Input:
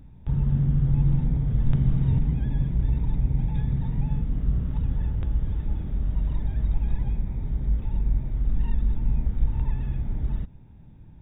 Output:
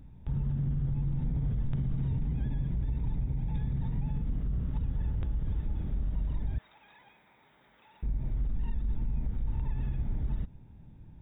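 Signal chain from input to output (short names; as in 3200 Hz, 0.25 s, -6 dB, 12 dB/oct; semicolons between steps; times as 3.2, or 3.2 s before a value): 6.58–8.03 HPF 1100 Hz 12 dB/oct; limiter -21 dBFS, peak gain reduction 11 dB; gain -3 dB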